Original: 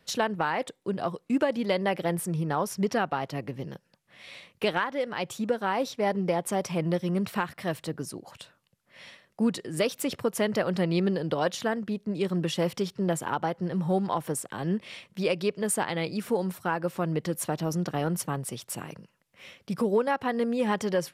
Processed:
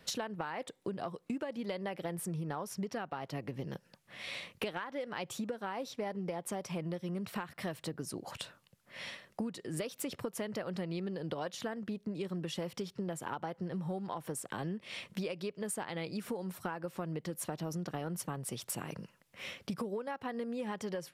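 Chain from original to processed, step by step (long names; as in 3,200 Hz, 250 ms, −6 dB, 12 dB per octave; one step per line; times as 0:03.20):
downward compressor 12 to 1, threshold −39 dBFS, peak gain reduction 19.5 dB
level +4 dB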